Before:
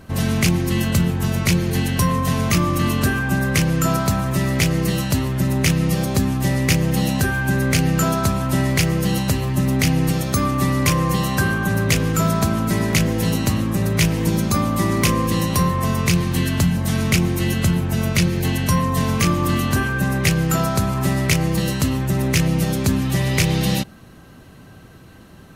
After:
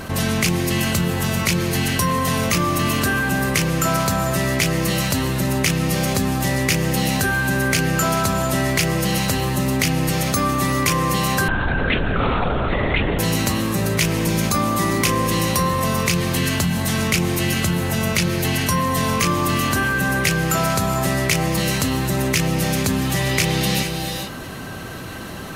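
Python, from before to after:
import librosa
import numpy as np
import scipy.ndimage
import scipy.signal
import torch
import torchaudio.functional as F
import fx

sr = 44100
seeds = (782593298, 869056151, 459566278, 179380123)

y = fx.low_shelf(x, sr, hz=310.0, db=-8.0)
y = fx.rev_gated(y, sr, seeds[0], gate_ms=470, shape='rising', drr_db=10.5)
y = fx.lpc_vocoder(y, sr, seeds[1], excitation='whisper', order=10, at=(11.48, 13.19))
y = fx.env_flatten(y, sr, amount_pct=50)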